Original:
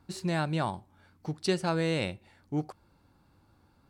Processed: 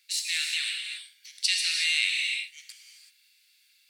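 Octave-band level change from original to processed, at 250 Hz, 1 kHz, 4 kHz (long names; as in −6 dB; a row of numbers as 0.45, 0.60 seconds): below −40 dB, below −20 dB, +15.0 dB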